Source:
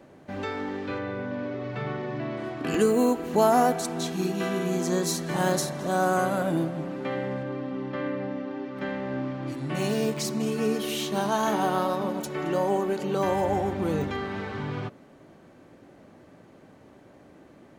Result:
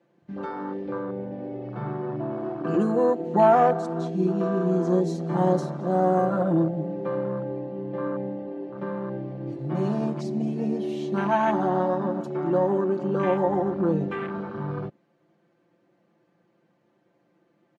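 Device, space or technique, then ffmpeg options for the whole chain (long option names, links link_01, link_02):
over-cleaned archive recording: -af "highpass=120,lowpass=6000,aecho=1:1:5.8:0.93,afwtdn=0.0316"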